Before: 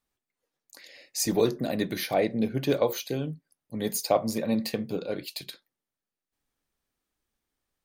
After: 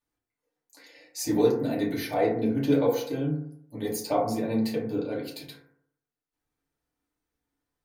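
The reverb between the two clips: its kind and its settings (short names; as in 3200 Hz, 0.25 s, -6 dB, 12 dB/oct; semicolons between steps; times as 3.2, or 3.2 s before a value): FDN reverb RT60 0.67 s, low-frequency decay 1×, high-frequency decay 0.3×, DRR -6.5 dB; gain -8 dB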